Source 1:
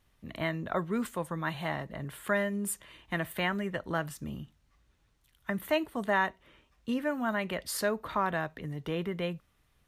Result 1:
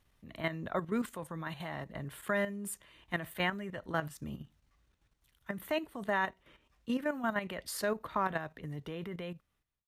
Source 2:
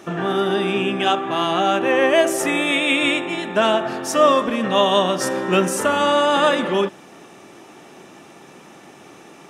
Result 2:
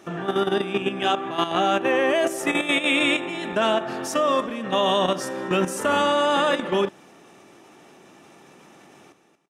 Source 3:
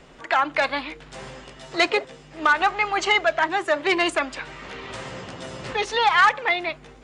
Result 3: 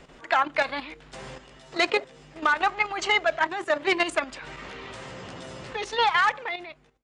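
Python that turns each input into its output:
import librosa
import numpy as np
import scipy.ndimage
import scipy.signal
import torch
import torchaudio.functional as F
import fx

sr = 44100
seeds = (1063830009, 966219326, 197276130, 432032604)

y = fx.fade_out_tail(x, sr, length_s=0.8)
y = fx.level_steps(y, sr, step_db=10)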